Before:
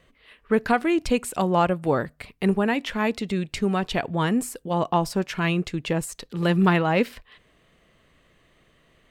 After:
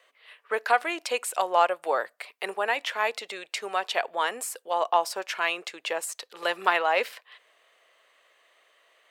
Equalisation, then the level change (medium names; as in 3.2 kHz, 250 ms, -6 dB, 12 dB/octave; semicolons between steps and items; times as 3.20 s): high-pass 550 Hz 24 dB/octave; +1.0 dB